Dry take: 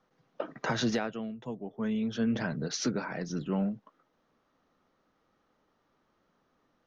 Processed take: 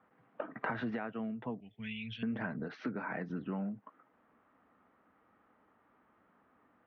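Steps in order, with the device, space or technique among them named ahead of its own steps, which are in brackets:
0:01.60–0:02.23: drawn EQ curve 100 Hz 0 dB, 320 Hz −23 dB, 1,200 Hz −28 dB, 2,500 Hz +12 dB
bass amplifier (downward compressor 5 to 1, threshold −38 dBFS, peak gain reduction 12.5 dB; loudspeaker in its box 83–2,300 Hz, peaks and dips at 150 Hz −10 dB, 370 Hz −5 dB, 540 Hz −5 dB)
level +5.5 dB

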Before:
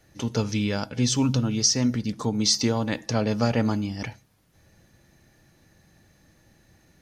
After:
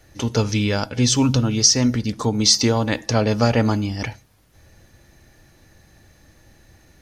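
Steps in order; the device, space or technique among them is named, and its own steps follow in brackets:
low shelf boost with a cut just above (low-shelf EQ 84 Hz +6.5 dB; parametric band 170 Hz −6 dB 0.98 octaves)
level +6.5 dB

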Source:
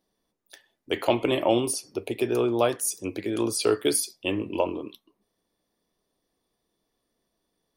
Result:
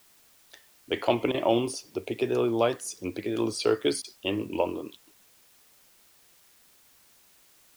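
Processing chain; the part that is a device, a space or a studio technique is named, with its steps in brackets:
worn cassette (low-pass filter 6,400 Hz 12 dB per octave; tape wow and flutter; tape dropouts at 0:01.32/0:04.02, 22 ms −12 dB; white noise bed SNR 29 dB)
level −1.5 dB

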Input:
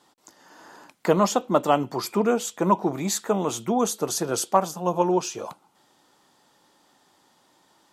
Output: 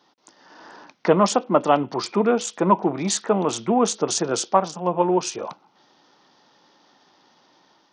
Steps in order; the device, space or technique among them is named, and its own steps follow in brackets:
Bluetooth headset (high-pass filter 130 Hz 12 dB per octave; automatic gain control gain up to 4 dB; downsampling to 16,000 Hz; SBC 64 kbit/s 48,000 Hz)

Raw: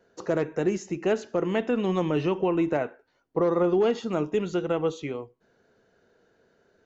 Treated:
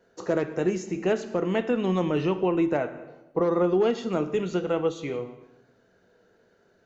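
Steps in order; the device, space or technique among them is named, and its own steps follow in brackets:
compressed reverb return (on a send at −4 dB: convolution reverb RT60 0.90 s, pre-delay 11 ms + downward compressor, threshold −29 dBFS, peak gain reduction 11 dB)

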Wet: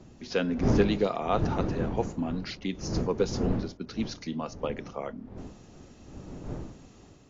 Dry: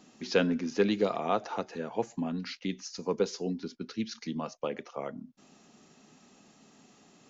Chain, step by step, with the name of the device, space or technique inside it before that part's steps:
smartphone video outdoors (wind on the microphone 270 Hz −35 dBFS; automatic gain control gain up to 5.5 dB; level −4 dB; AAC 48 kbit/s 16,000 Hz)

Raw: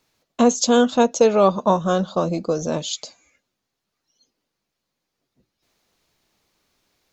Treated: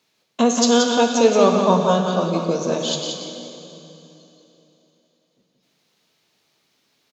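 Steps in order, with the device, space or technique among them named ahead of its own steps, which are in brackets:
PA in a hall (high-pass filter 160 Hz 12 dB per octave; parametric band 3,400 Hz +6 dB 1.5 octaves; single-tap delay 178 ms −5.5 dB; convolution reverb RT60 2.8 s, pre-delay 3 ms, DRR 4.5 dB)
low-shelf EQ 330 Hz +3 dB
four-comb reverb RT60 3.8 s, combs from 33 ms, DRR 14.5 dB
level −2.5 dB

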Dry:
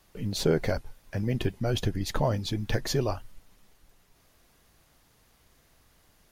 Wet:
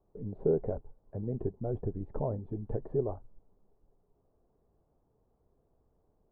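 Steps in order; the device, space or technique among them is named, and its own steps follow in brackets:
under water (low-pass filter 870 Hz 24 dB per octave; parametric band 420 Hz +8 dB 0.34 octaves)
level −7.5 dB

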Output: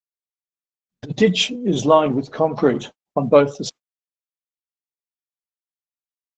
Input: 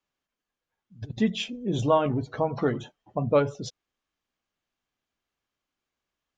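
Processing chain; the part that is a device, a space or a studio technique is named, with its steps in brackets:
0:01.08–0:01.55: comb filter 6.6 ms, depth 73%
high-shelf EQ 5,700 Hz +2.5 dB
0:02.33–0:03.17: notch filter 930 Hz, Q 25
dynamic equaliser 1,600 Hz, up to −5 dB, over −49 dBFS, Q 3.7
video call (high-pass filter 160 Hz 24 dB per octave; automatic gain control gain up to 14 dB; noise gate −36 dBFS, range −44 dB; Opus 12 kbit/s 48,000 Hz)

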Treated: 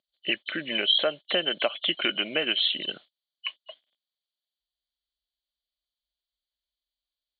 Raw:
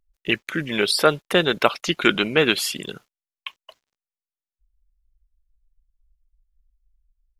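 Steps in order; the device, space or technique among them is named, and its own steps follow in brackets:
hearing aid with frequency lowering (hearing-aid frequency compression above 2,900 Hz 4 to 1; downward compressor 3 to 1, threshold −24 dBFS, peak gain reduction 10.5 dB; loudspeaker in its box 320–5,800 Hz, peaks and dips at 430 Hz −8 dB, 610 Hz +7 dB, 930 Hz −8 dB, 1,300 Hz −6 dB, 3,200 Hz +6 dB, 4,800 Hz −7 dB)

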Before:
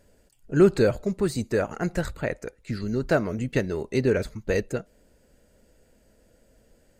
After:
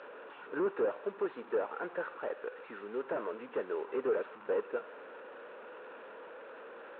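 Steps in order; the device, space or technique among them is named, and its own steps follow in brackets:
digital answering machine (band-pass filter 360–3,200 Hz; linear delta modulator 16 kbit/s, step −39 dBFS; loudspeaker in its box 420–4,400 Hz, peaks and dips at 460 Hz +4 dB, 670 Hz −6 dB, 980 Hz +4 dB, 1,400 Hz +4 dB, 2,100 Hz −10 dB, 3,100 Hz −8 dB)
level −2.5 dB

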